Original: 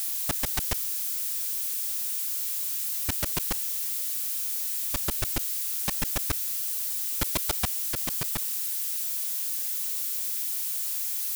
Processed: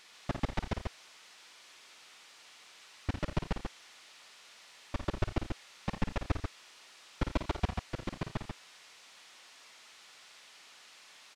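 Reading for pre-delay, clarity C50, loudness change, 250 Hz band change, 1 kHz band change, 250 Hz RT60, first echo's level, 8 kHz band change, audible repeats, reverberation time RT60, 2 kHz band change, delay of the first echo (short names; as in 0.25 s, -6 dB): none, none, -12.0 dB, +1.0 dB, -2.0 dB, none, -7.5 dB, -26.0 dB, 3, none, -6.0 dB, 53 ms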